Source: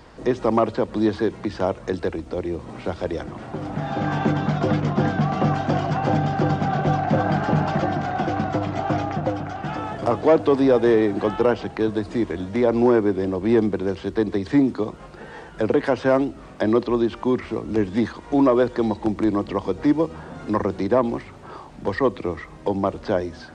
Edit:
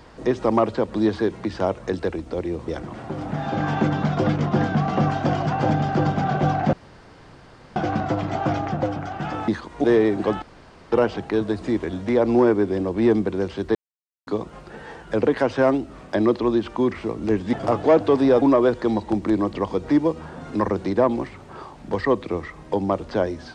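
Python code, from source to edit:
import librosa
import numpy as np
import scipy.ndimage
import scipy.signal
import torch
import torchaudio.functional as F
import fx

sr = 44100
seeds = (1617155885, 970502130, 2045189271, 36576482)

y = fx.edit(x, sr, fx.cut(start_s=2.68, length_s=0.44),
    fx.room_tone_fill(start_s=7.17, length_s=1.03),
    fx.swap(start_s=9.92, length_s=0.89, other_s=18.0, other_length_s=0.36),
    fx.insert_room_tone(at_s=11.39, length_s=0.5),
    fx.silence(start_s=14.22, length_s=0.52), tone=tone)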